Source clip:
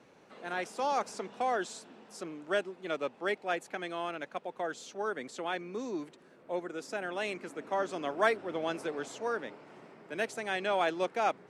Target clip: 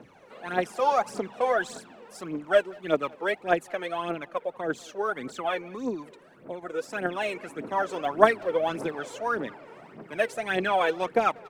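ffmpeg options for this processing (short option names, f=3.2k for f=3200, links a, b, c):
-filter_complex "[0:a]asettb=1/sr,asplit=3[a][b][c];[a]atrim=end=5.644[d];[b]atrim=start=5.64:end=6.63,asetpts=PTS-STARTPTS,afade=t=in:d=0.004:c=qsin,afade=t=out:st=0.986:d=0.004:c=qsin,acompressor=threshold=-37dB:ratio=4[e];[c]atrim=start=6.626[f];[d][e]acrossfade=d=0.004:c1=hsin:c2=qsin[g];[g][f]acrossfade=d=0.004:c1=qsin:c2=hsin,aphaser=in_gain=1:out_gain=1:delay=2.3:decay=0.69:speed=1.7:type=triangular,equalizer=f=5.6k:t=o:w=1.7:g=-6.5,asplit=2[h][i];[i]adelay=190,highpass=300,lowpass=3.4k,asoftclip=type=hard:threshold=-24dB,volume=-23dB[j];[h][j]amix=inputs=2:normalize=0,asplit=3[k][l][m];[k]afade=t=out:st=4.11:d=0.02[n];[l]adynamicequalizer=threshold=0.00562:dfrequency=1600:dqfactor=0.7:tfrequency=1600:tqfactor=0.7:attack=5:release=100:ratio=0.375:range=2:mode=cutabove:tftype=highshelf,afade=t=in:st=4.11:d=0.02,afade=t=out:st=4.7:d=0.02[o];[m]afade=t=in:st=4.7:d=0.02[p];[n][o][p]amix=inputs=3:normalize=0,volume=4.5dB"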